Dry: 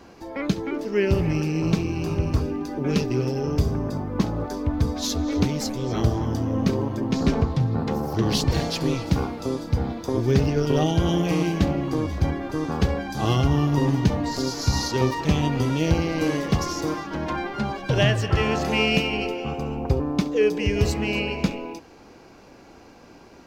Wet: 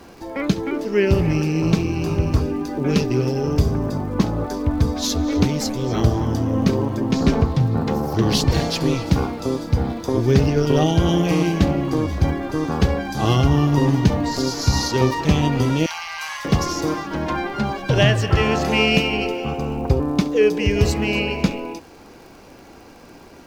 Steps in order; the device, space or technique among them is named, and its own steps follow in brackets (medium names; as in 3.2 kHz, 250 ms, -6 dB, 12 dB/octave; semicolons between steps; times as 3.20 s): 15.86–16.45 s: steep high-pass 830 Hz 48 dB/octave; vinyl LP (crackle 77 per s -42 dBFS; pink noise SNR 38 dB); trim +4 dB